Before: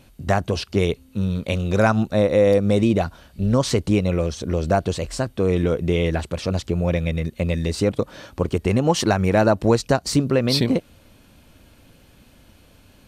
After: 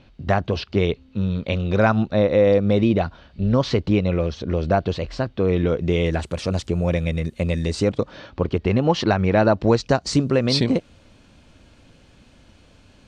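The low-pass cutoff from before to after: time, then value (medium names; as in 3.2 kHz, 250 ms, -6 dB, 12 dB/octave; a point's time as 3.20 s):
low-pass 24 dB/octave
5.60 s 4.6 kHz
6.31 s 10 kHz
7.60 s 10 kHz
8.25 s 4.6 kHz
9.43 s 4.6 kHz
10.21 s 7.7 kHz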